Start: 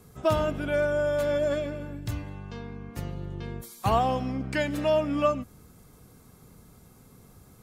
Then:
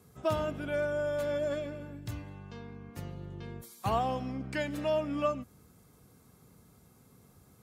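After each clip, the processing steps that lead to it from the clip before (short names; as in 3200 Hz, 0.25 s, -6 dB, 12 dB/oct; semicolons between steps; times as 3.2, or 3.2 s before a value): HPF 62 Hz; gain -6 dB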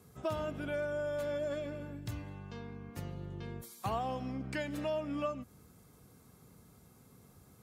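compressor 2:1, threshold -36 dBFS, peak gain reduction 7 dB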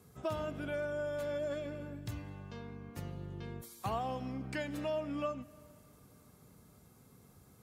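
plate-style reverb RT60 3.3 s, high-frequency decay 0.9×, DRR 20 dB; gain -1 dB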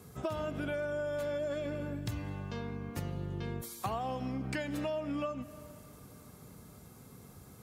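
compressor, threshold -40 dBFS, peak gain reduction 9 dB; gain +7.5 dB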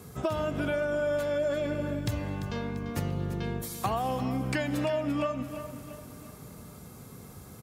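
feedback echo 0.343 s, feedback 46%, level -12 dB; gain +6 dB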